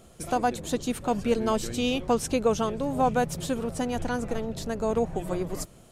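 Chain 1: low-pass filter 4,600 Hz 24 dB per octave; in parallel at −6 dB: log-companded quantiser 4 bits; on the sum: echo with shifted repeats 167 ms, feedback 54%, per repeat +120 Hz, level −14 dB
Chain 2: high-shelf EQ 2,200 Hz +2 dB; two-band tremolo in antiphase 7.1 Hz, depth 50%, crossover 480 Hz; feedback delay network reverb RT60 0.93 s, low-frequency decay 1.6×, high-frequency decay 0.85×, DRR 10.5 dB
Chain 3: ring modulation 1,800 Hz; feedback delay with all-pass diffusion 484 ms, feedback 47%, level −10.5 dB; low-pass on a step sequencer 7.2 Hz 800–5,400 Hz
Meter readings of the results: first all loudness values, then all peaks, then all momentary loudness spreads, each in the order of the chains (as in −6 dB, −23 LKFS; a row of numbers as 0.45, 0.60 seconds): −24.0, −29.5, −23.0 LKFS; −7.5, −13.5, −5.0 dBFS; 7, 7, 8 LU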